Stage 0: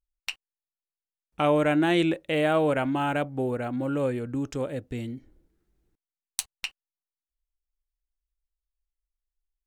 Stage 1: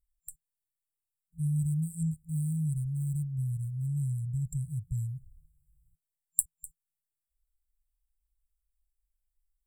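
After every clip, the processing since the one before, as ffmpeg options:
ffmpeg -i in.wav -af "afftfilt=real='re*(1-between(b*sr/4096,170,7300))':imag='im*(1-between(b*sr/4096,170,7300))':win_size=4096:overlap=0.75,volume=5.5dB" out.wav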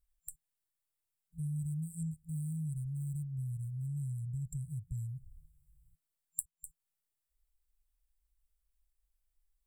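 ffmpeg -i in.wav -af "acompressor=threshold=-44dB:ratio=2,volume=1.5dB" out.wav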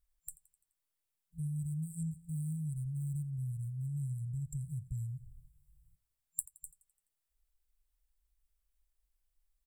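ffmpeg -i in.wav -af "aecho=1:1:85|170|255|340|425:0.1|0.057|0.0325|0.0185|0.0106" out.wav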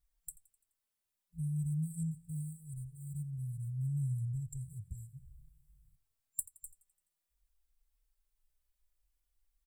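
ffmpeg -i in.wav -filter_complex "[0:a]asplit=2[link_01][link_02];[link_02]adelay=3.8,afreqshift=-0.53[link_03];[link_01][link_03]amix=inputs=2:normalize=1,volume=3dB" out.wav

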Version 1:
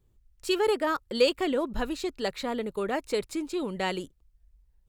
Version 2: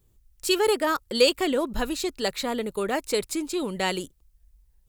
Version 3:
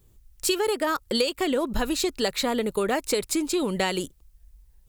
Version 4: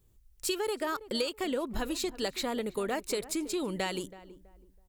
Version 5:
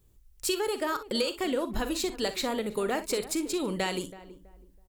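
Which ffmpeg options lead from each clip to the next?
ffmpeg -i in.wav -af "highshelf=frequency=5100:gain=11,volume=2.5dB" out.wav
ffmpeg -i in.wav -af "acompressor=threshold=-26dB:ratio=12,volume=5.5dB" out.wav
ffmpeg -i in.wav -filter_complex "[0:a]asplit=2[link_01][link_02];[link_02]adelay=326,lowpass=frequency=1100:poles=1,volume=-15dB,asplit=2[link_03][link_04];[link_04]adelay=326,lowpass=frequency=1100:poles=1,volume=0.29,asplit=2[link_05][link_06];[link_06]adelay=326,lowpass=frequency=1100:poles=1,volume=0.29[link_07];[link_01][link_03][link_05][link_07]amix=inputs=4:normalize=0,volume=-7.5dB" out.wav
ffmpeg -i in.wav -af "aecho=1:1:43|61:0.211|0.2,volume=2.5dB" out.wav

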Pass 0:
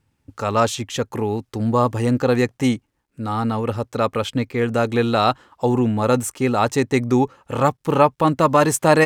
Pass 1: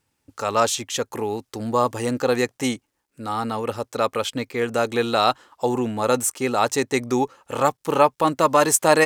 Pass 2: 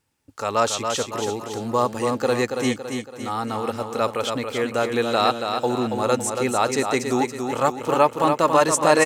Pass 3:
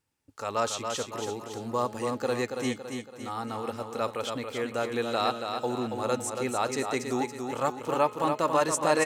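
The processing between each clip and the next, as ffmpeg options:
ffmpeg -i in.wav -af "bass=frequency=250:gain=-10,treble=frequency=4000:gain=6,volume=-1dB" out.wav
ffmpeg -i in.wav -filter_complex "[0:a]aecho=1:1:280|560|840|1120|1400|1680:0.501|0.236|0.111|0.052|0.0245|0.0115,acrossover=split=9200[link_01][link_02];[link_02]acompressor=threshold=-44dB:ratio=4:attack=1:release=60[link_03];[link_01][link_03]amix=inputs=2:normalize=0,volume=-1dB" out.wav
ffmpeg -i in.wav -af "bandreject=frequency=211:width_type=h:width=4,bandreject=frequency=422:width_type=h:width=4,bandreject=frequency=633:width_type=h:width=4,bandreject=frequency=844:width_type=h:width=4,bandreject=frequency=1055:width_type=h:width=4,bandreject=frequency=1266:width_type=h:width=4,bandreject=frequency=1477:width_type=h:width=4,bandreject=frequency=1688:width_type=h:width=4,bandreject=frequency=1899:width_type=h:width=4,bandreject=frequency=2110:width_type=h:width=4,bandreject=frequency=2321:width_type=h:width=4,bandreject=frequency=2532:width_type=h:width=4,bandreject=frequency=2743:width_type=h:width=4,bandreject=frequency=2954:width_type=h:width=4,bandreject=frequency=3165:width_type=h:width=4,bandreject=frequency=3376:width_type=h:width=4,bandreject=frequency=3587:width_type=h:width=4,bandreject=frequency=3798:width_type=h:width=4,bandreject=frequency=4009:width_type=h:width=4,bandreject=frequency=4220:width_type=h:width=4,bandreject=frequency=4431:width_type=h:width=4,volume=-7.5dB" out.wav

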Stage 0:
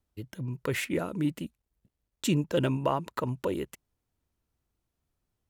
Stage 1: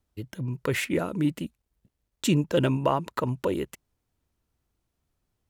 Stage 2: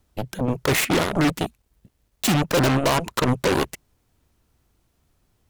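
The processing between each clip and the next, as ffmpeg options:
ffmpeg -i in.wav -af "highshelf=frequency=11000:gain=-2.5,volume=3.5dB" out.wav
ffmpeg -i in.wav -af "volume=20dB,asoftclip=hard,volume=-20dB,aeval=exprs='0.106*(cos(1*acos(clip(val(0)/0.106,-1,1)))-cos(1*PI/2))+0.0422*(cos(7*acos(clip(val(0)/0.106,-1,1)))-cos(7*PI/2))':channel_layout=same,volume=6.5dB" out.wav

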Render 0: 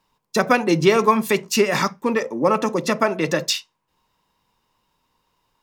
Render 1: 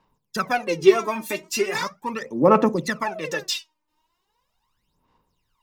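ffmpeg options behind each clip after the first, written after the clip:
ffmpeg -i in.wav -af "aphaser=in_gain=1:out_gain=1:delay=3.3:decay=0.79:speed=0.39:type=sinusoidal,volume=-8.5dB" out.wav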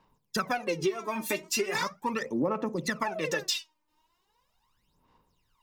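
ffmpeg -i in.wav -af "acompressor=threshold=-25dB:ratio=16" out.wav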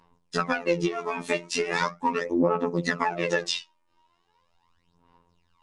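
ffmpeg -i in.wav -af "highshelf=frequency=5800:gain=-11,afftfilt=real='hypot(re,im)*cos(PI*b)':imag='0':win_size=2048:overlap=0.75,volume=8.5dB" -ar 22050 -c:a nellymoser out.flv

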